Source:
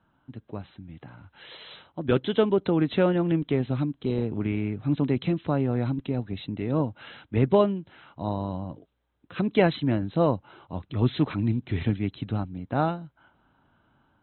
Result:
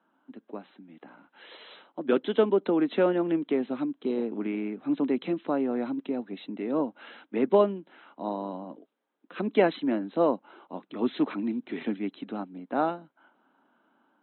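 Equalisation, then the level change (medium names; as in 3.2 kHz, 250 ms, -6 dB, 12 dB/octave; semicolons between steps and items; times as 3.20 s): steep high-pass 220 Hz 36 dB/octave; low-pass 2.3 kHz 6 dB/octave; 0.0 dB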